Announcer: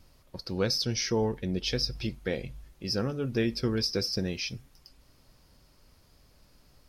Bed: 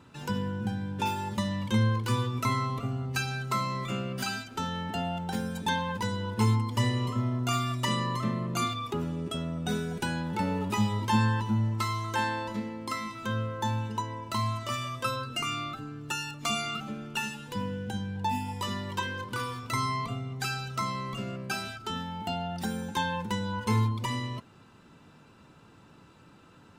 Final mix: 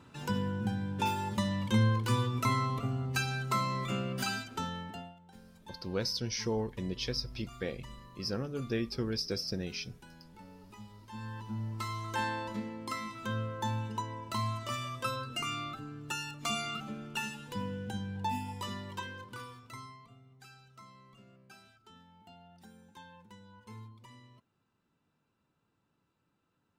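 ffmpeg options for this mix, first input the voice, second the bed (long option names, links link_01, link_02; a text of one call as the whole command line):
ffmpeg -i stem1.wav -i stem2.wav -filter_complex "[0:a]adelay=5350,volume=-5.5dB[link_01];[1:a]volume=18dB,afade=type=out:start_time=4.45:duration=0.7:silence=0.0794328,afade=type=in:start_time=11.1:duration=1.18:silence=0.105925,afade=type=out:start_time=18.23:duration=1.76:silence=0.112202[link_02];[link_01][link_02]amix=inputs=2:normalize=0" out.wav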